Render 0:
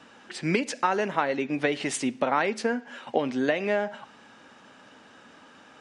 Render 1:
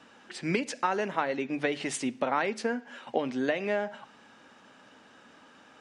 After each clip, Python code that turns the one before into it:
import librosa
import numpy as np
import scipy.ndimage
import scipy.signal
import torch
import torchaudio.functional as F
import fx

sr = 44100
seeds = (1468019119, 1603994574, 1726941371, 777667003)

y = fx.hum_notches(x, sr, base_hz=50, count=3)
y = y * 10.0 ** (-3.5 / 20.0)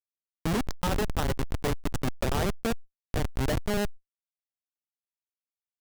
y = fx.rider(x, sr, range_db=5, speed_s=2.0)
y = fx.schmitt(y, sr, flips_db=-24.5)
y = fx.env_flatten(y, sr, amount_pct=70)
y = y * 10.0 ** (5.5 / 20.0)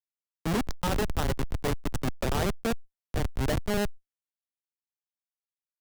y = fx.band_widen(x, sr, depth_pct=40)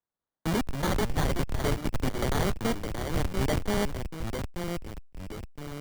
y = fx.tracing_dist(x, sr, depth_ms=0.049)
y = fx.echo_pitch(y, sr, ms=189, semitones=-3, count=2, db_per_echo=-6.0)
y = fx.sample_hold(y, sr, seeds[0], rate_hz=2600.0, jitter_pct=0)